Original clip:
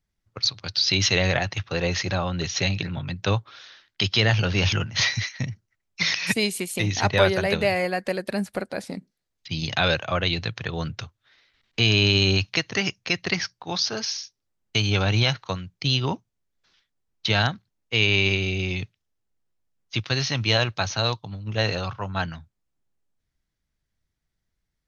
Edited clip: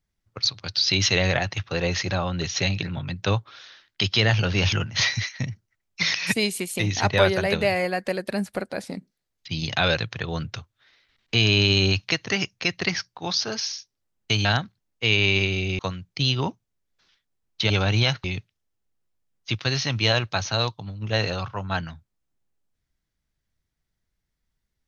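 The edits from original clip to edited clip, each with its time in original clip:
9.98–10.43 s: delete
14.90–15.44 s: swap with 17.35–18.69 s

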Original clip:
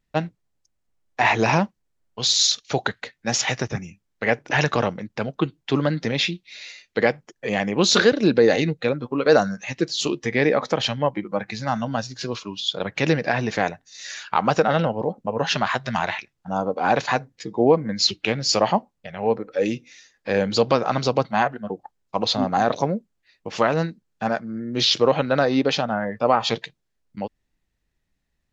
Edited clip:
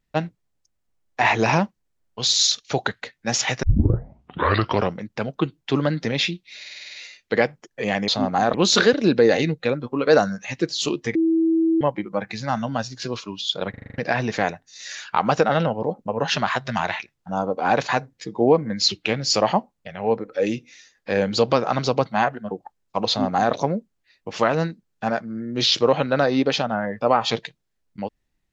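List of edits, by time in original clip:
3.63 s: tape start 1.33 s
6.59 s: stutter 0.05 s, 8 plays
10.34–11.00 s: bleep 326 Hz -15.5 dBFS
12.89 s: stutter in place 0.04 s, 7 plays
22.27–22.73 s: copy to 7.73 s

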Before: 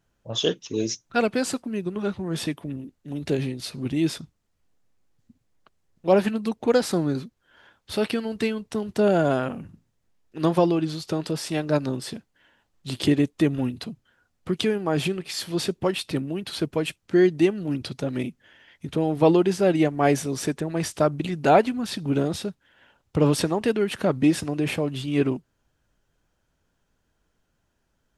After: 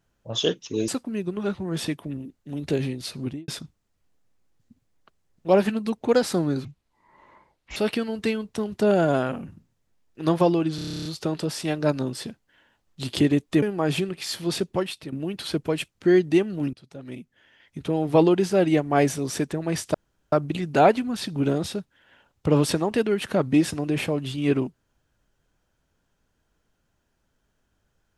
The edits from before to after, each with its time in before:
0.88–1.47 s: delete
3.80–4.07 s: studio fade out
7.24–7.93 s: speed 62%
10.92 s: stutter 0.03 s, 11 plays
13.49–14.70 s: delete
15.78–16.20 s: fade out, to -13.5 dB
17.81–19.18 s: fade in, from -22.5 dB
21.02 s: insert room tone 0.38 s

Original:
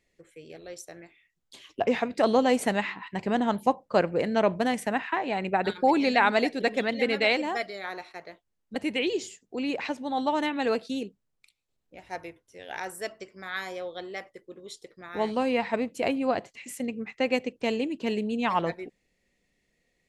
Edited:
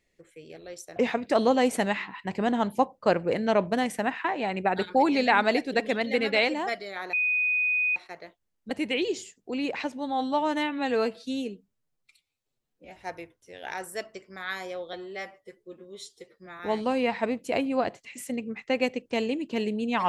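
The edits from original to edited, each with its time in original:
0.96–1.84 s: delete
8.01 s: add tone 2.49 kHz -22 dBFS 0.83 s
10.04–12.02 s: stretch 1.5×
13.99–15.10 s: stretch 1.5×

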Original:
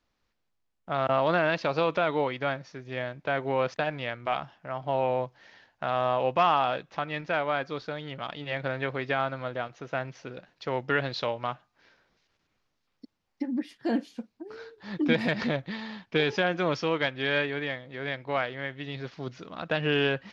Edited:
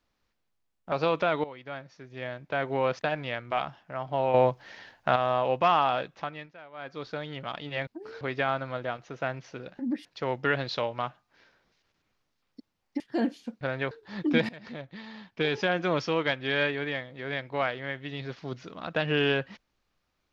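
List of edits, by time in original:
0.92–1.67 s: delete
2.19–3.48 s: fade in, from -16.5 dB
5.09–5.91 s: gain +7 dB
6.86–7.90 s: dip -20 dB, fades 0.42 s
8.62–8.92 s: swap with 14.32–14.66 s
13.45–13.71 s: move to 10.50 s
15.24–16.55 s: fade in, from -23 dB

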